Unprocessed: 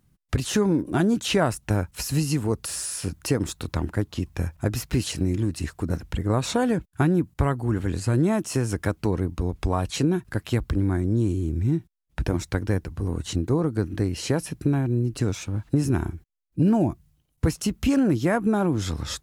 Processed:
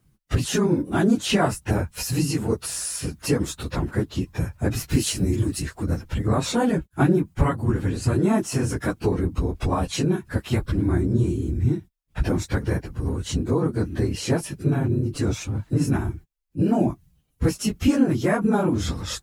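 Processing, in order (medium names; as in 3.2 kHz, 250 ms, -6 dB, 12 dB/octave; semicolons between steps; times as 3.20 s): phase randomisation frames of 50 ms; 4.89–5.62 s: treble shelf 6.3 kHz +9 dB; trim +1.5 dB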